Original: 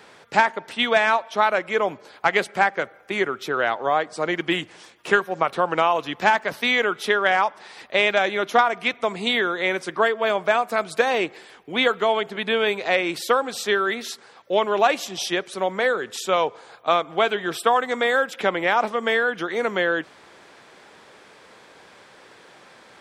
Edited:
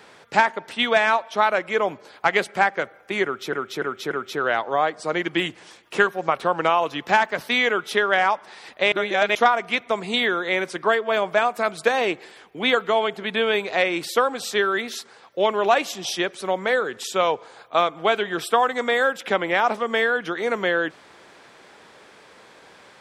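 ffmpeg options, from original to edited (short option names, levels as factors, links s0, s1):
-filter_complex "[0:a]asplit=6[s0][s1][s2][s3][s4][s5];[s0]atrim=end=3.532[s6];[s1]atrim=start=3.238:end=3.532[s7];[s2]atrim=start=3.238:end=3.532[s8];[s3]atrim=start=3.238:end=8.052[s9];[s4]atrim=start=8.048:end=8.482,asetpts=PTS-STARTPTS,areverse[s10];[s5]atrim=start=8.478[s11];[s6][s7]acrossfade=d=0.004:c1=hsin:c2=hsin[s12];[s12][s8]acrossfade=d=0.004:c1=hsin:c2=hsin[s13];[s13][s9]acrossfade=d=0.004:c1=hsin:c2=hsin[s14];[s14][s10]acrossfade=d=0.004:c1=hsin:c2=hsin[s15];[s15][s11]acrossfade=d=0.004:c1=hsin:c2=hsin"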